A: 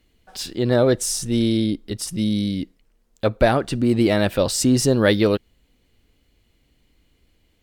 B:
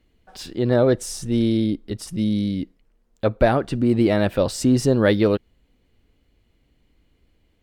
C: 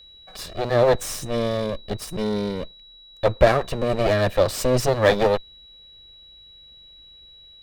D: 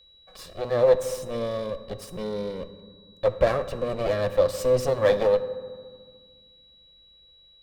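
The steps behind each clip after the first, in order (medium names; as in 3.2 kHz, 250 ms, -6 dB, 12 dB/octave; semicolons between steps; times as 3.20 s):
treble shelf 2.9 kHz -9 dB
comb filter that takes the minimum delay 1.7 ms; whistle 3.9 kHz -48 dBFS; trim +2.5 dB
small resonant body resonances 520/1100 Hz, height 9 dB, ringing for 45 ms; reverberation RT60 1.7 s, pre-delay 3 ms, DRR 11 dB; trim -8.5 dB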